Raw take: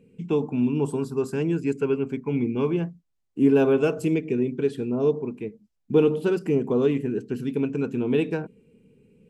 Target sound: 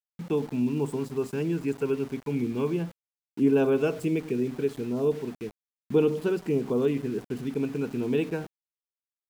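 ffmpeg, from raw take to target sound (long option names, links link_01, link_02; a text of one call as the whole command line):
ffmpeg -i in.wav -af "aeval=exprs='val(0)*gte(abs(val(0)),0.0119)':channel_layout=same,volume=-3.5dB" out.wav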